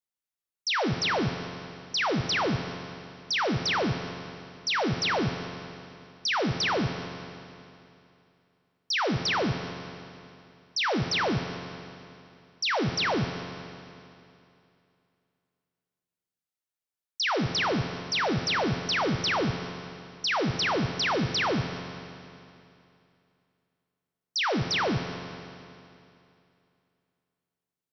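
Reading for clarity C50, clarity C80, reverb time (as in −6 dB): 7.0 dB, 8.0 dB, 2.7 s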